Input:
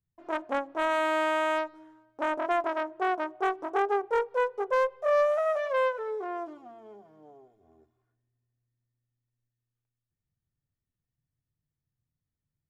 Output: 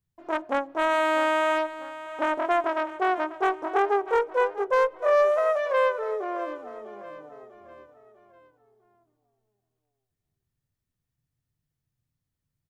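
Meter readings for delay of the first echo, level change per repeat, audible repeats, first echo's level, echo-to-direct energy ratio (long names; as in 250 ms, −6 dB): 648 ms, −7.0 dB, 3, −15.0 dB, −14.0 dB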